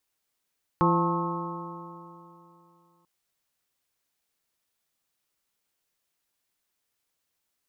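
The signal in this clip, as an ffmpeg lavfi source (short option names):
-f lavfi -i "aevalsrc='0.0708*pow(10,-3*t/2.87)*sin(2*PI*169.31*t)+0.0631*pow(10,-3*t/2.87)*sin(2*PI*340.49*t)+0.0316*pow(10,-3*t/2.87)*sin(2*PI*515.37*t)+0.0106*pow(10,-3*t/2.87)*sin(2*PI*695.72*t)+0.0562*pow(10,-3*t/2.87)*sin(2*PI*883.22*t)+0.075*pow(10,-3*t/2.87)*sin(2*PI*1079.42*t)+0.0282*pow(10,-3*t/2.87)*sin(2*PI*1285.77*t)':d=2.24:s=44100"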